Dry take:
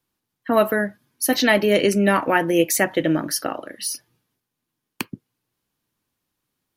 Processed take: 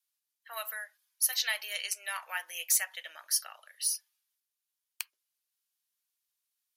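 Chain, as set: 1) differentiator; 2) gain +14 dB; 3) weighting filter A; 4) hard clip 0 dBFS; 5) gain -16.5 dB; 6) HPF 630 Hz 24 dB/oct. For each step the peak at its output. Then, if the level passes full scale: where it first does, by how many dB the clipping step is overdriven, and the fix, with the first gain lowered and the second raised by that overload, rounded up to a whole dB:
-6.5, +7.5, +5.5, 0.0, -16.5, -14.5 dBFS; step 2, 5.5 dB; step 2 +8 dB, step 5 -10.5 dB

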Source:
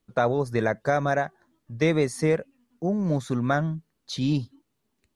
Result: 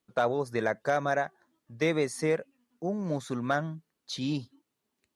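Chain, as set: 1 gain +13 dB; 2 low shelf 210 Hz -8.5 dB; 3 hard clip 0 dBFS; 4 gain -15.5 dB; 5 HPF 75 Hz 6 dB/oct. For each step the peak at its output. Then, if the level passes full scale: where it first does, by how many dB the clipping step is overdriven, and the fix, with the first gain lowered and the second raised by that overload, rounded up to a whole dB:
+3.5, +3.0, 0.0, -15.5, -15.0 dBFS; step 1, 3.0 dB; step 1 +10 dB, step 4 -12.5 dB

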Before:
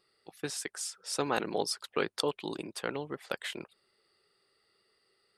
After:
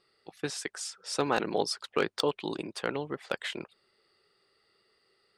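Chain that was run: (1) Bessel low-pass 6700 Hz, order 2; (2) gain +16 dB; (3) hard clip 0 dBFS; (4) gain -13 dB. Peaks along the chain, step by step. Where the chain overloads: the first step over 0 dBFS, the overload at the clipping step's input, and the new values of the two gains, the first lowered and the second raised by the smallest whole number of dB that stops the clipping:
-11.5, +4.5, 0.0, -13.0 dBFS; step 2, 4.5 dB; step 2 +11 dB, step 4 -8 dB

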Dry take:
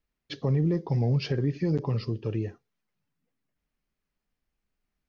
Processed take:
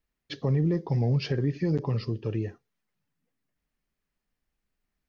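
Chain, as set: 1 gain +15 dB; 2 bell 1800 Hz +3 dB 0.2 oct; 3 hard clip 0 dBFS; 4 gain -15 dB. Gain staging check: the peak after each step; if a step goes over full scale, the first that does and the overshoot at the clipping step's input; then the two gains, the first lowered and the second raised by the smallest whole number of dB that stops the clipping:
-2.0, -2.0, -2.0, -17.0 dBFS; no overload

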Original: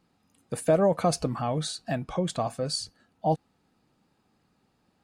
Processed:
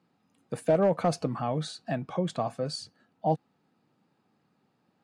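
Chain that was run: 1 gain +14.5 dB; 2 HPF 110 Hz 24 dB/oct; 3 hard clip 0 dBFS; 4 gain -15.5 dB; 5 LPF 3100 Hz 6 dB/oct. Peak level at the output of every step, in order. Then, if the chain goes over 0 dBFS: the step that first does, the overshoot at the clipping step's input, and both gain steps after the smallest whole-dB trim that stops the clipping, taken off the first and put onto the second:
+2.0, +4.0, 0.0, -15.5, -15.5 dBFS; step 1, 4.0 dB; step 1 +10.5 dB, step 4 -11.5 dB

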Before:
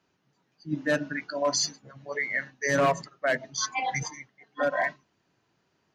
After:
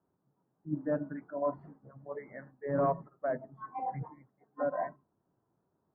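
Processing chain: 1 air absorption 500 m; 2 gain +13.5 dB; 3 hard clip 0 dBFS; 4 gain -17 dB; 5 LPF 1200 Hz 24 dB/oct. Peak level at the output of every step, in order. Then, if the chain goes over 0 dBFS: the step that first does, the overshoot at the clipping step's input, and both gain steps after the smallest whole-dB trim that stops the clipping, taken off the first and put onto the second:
-17.0, -3.5, -3.5, -20.5, -20.5 dBFS; no overload

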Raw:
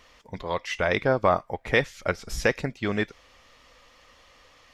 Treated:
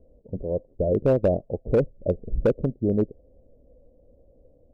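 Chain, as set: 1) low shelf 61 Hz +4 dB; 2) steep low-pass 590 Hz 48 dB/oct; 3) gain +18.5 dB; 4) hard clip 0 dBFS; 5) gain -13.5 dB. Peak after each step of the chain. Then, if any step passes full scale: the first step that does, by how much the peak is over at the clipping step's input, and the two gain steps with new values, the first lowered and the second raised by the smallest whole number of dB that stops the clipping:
-7.5, -13.5, +5.0, 0.0, -13.5 dBFS; step 3, 5.0 dB; step 3 +13.5 dB, step 5 -8.5 dB

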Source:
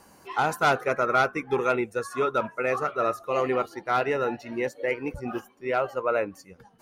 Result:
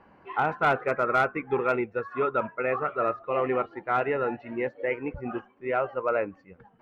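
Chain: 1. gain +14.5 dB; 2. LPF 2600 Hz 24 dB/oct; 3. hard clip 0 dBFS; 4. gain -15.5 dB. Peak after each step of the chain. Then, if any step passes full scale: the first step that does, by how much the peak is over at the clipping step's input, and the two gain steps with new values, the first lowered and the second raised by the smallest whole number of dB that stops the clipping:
+3.0, +3.0, 0.0, -15.5 dBFS; step 1, 3.0 dB; step 1 +11.5 dB, step 4 -12.5 dB

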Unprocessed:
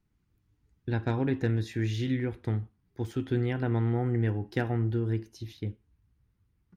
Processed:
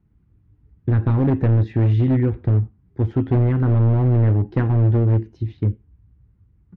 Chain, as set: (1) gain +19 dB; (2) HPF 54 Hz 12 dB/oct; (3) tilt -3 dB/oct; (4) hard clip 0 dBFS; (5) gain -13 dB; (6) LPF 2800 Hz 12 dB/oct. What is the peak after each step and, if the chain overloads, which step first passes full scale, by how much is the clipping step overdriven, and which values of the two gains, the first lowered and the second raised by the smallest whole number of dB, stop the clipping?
+4.0, +3.5, +9.5, 0.0, -13.0, -12.5 dBFS; step 1, 9.5 dB; step 1 +9 dB, step 5 -3 dB

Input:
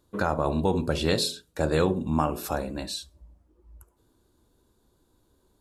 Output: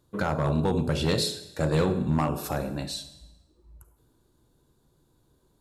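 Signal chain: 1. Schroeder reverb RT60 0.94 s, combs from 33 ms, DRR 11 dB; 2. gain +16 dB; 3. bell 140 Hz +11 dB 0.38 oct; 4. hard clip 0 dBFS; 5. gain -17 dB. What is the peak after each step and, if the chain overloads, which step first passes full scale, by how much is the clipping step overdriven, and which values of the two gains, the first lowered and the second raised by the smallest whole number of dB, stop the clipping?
-8.5, +7.5, +7.5, 0.0, -17.0 dBFS; step 2, 7.5 dB; step 2 +8 dB, step 5 -9 dB

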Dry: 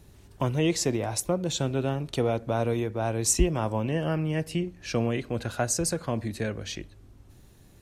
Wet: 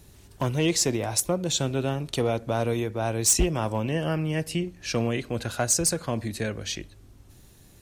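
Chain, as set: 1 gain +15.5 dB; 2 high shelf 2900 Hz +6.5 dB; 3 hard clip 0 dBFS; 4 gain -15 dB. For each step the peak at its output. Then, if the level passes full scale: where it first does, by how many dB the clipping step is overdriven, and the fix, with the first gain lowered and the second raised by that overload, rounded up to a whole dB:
+6.0, +10.0, 0.0, -15.0 dBFS; step 1, 10.0 dB; step 1 +5.5 dB, step 4 -5 dB

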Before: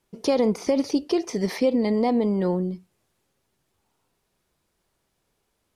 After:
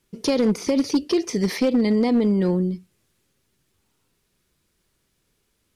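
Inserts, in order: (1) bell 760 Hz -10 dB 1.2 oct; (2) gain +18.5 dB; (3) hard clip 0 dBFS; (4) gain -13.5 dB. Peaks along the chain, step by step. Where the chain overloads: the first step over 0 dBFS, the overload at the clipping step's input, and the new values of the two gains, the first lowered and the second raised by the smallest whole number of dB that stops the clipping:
-13.5, +5.0, 0.0, -13.5 dBFS; step 2, 5.0 dB; step 2 +13.5 dB, step 4 -8.5 dB

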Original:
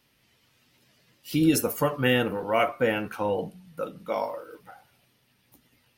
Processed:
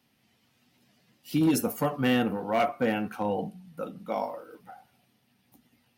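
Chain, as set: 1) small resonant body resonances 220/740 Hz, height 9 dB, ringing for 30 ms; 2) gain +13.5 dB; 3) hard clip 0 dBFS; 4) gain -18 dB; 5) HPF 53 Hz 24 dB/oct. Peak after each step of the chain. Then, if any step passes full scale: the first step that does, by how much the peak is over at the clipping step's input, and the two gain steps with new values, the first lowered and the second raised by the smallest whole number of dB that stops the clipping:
-7.0, +6.5, 0.0, -18.0, -14.0 dBFS; step 2, 6.5 dB; step 2 +6.5 dB, step 4 -11 dB

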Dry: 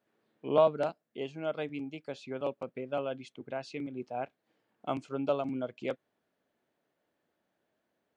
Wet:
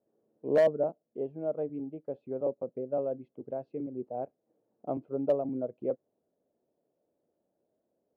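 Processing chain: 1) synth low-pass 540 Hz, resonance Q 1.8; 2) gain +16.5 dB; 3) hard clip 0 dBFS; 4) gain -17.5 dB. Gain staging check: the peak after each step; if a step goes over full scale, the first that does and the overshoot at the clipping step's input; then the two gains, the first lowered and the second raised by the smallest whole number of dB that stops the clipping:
-11.5, +5.0, 0.0, -17.5 dBFS; step 2, 5.0 dB; step 2 +11.5 dB, step 4 -12.5 dB

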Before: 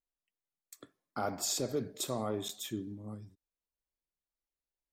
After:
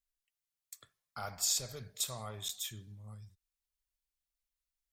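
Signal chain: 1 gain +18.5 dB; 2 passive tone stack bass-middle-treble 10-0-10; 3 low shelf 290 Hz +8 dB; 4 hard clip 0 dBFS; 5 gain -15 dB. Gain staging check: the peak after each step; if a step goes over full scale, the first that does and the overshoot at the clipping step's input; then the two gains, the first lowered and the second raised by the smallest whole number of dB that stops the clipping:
-2.5, -3.5, -3.5, -3.5, -18.5 dBFS; no overload

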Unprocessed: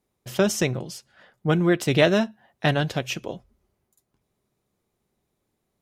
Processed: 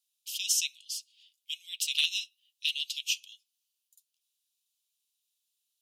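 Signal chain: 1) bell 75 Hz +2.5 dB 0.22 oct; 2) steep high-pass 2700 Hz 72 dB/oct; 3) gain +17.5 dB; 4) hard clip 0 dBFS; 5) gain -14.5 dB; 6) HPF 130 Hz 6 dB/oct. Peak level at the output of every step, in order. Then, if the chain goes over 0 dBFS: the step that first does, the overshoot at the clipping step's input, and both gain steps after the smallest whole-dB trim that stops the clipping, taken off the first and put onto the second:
-6.5, -13.0, +4.5, 0.0, -14.5, -14.0 dBFS; step 3, 4.5 dB; step 3 +12.5 dB, step 5 -9.5 dB

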